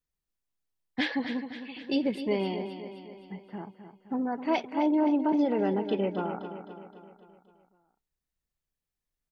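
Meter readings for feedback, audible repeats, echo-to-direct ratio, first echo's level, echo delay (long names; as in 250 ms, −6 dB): 54%, 5, −8.5 dB, −10.0 dB, 260 ms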